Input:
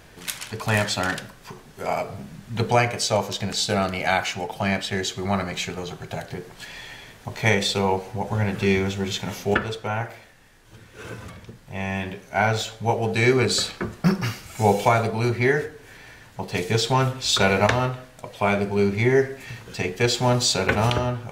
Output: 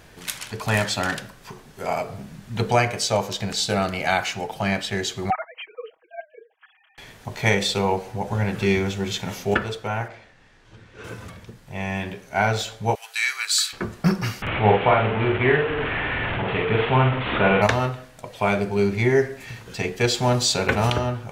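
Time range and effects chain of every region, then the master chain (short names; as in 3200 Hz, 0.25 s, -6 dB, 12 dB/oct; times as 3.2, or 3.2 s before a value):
5.3–6.98 sine-wave speech + comb 6.3 ms, depth 87% + upward expander 2.5:1, over -34 dBFS
10.08–11.04 air absorption 100 m + mismatched tape noise reduction encoder only
12.95–13.73 HPF 1300 Hz 24 dB/oct + high shelf 8600 Hz +11 dB
14.42–17.62 delta modulation 16 kbps, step -20.5 dBFS + doubler 47 ms -4 dB + mismatched tape noise reduction decoder only
whole clip: dry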